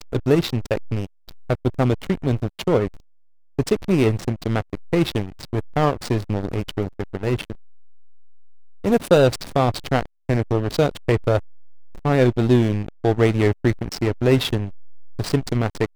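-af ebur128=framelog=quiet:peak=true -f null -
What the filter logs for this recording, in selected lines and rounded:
Integrated loudness:
  I:         -21.8 LUFS
  Threshold: -32.1 LUFS
Loudness range:
  LRA:         4.5 LU
  Threshold: -42.3 LUFS
  LRA low:   -24.8 LUFS
  LRA high:  -20.2 LUFS
True peak:
  Peak:       -2.6 dBFS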